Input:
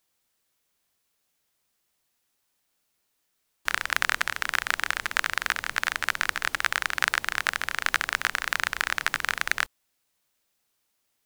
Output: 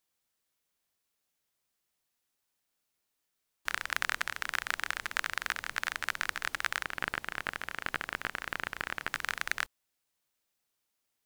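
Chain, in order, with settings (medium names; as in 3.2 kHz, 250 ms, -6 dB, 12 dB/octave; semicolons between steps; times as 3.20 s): 6.83–9.14 s: valve stage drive 7 dB, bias 0.5; trim -7 dB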